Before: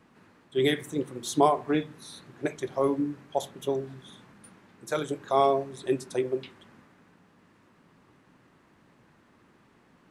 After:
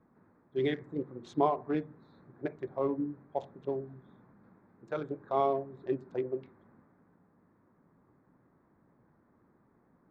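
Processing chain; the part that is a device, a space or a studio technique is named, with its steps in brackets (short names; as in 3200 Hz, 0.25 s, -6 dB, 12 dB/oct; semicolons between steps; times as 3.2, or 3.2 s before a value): Wiener smoothing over 15 samples; air absorption 160 m; behind a face mask (high shelf 3400 Hz -7.5 dB); gain -5 dB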